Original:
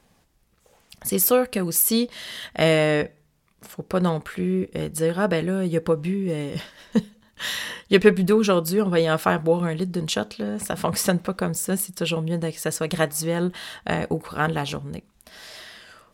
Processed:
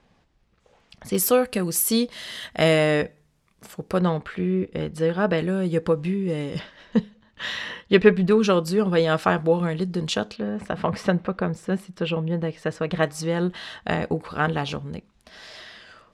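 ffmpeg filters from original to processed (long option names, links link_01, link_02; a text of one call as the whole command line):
ffmpeg -i in.wav -af "asetnsamples=nb_out_samples=441:pad=0,asendcmd='1.15 lowpass f 11000;3.99 lowpass f 4100;5.38 lowpass f 7400;6.59 lowpass f 3700;8.31 lowpass f 6600;10.36 lowpass f 2700;13.03 lowpass f 5500',lowpass=4200" out.wav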